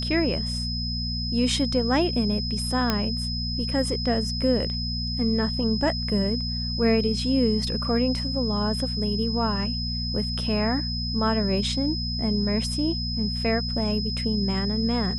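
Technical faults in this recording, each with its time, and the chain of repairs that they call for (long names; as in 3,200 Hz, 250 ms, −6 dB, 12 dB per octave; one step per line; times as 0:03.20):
mains hum 60 Hz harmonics 4 −30 dBFS
whistle 5,100 Hz −30 dBFS
0:02.90: click −8 dBFS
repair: click removal
hum removal 60 Hz, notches 4
notch filter 5,100 Hz, Q 30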